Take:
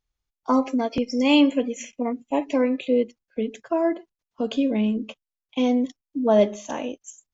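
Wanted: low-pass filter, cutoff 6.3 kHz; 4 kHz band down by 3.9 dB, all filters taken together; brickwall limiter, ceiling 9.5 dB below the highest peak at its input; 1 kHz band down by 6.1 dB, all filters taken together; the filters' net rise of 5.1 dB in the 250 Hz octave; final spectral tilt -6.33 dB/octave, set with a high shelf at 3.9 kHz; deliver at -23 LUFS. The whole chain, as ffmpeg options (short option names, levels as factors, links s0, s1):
-af "lowpass=6300,equalizer=f=250:t=o:g=6,equalizer=f=1000:t=o:g=-9,highshelf=f=3900:g=6.5,equalizer=f=4000:t=o:g=-8.5,volume=1.19,alimiter=limit=0.211:level=0:latency=1"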